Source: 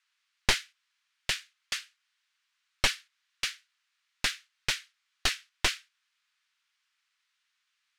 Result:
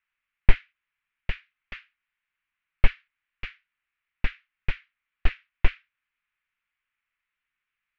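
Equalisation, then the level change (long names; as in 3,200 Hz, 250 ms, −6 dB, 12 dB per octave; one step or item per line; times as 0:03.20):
low-pass with resonance 2,400 Hz, resonance Q 2.6
spectral tilt −4.5 dB per octave
−5.5 dB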